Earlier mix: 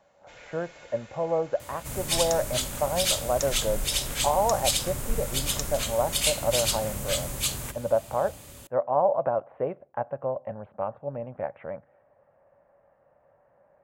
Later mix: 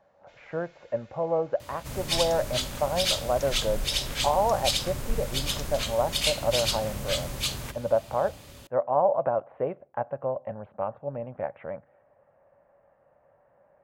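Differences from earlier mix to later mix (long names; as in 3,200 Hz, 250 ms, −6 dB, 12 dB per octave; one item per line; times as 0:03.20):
first sound −9.0 dB
master: add high shelf with overshoot 6,300 Hz −6 dB, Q 1.5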